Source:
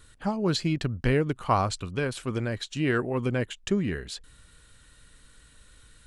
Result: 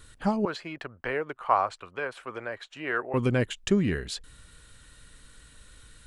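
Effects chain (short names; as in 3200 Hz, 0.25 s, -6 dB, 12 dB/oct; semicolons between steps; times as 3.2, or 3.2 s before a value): 0.45–3.14 three-band isolator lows -23 dB, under 490 Hz, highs -17 dB, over 2300 Hz; gain +2.5 dB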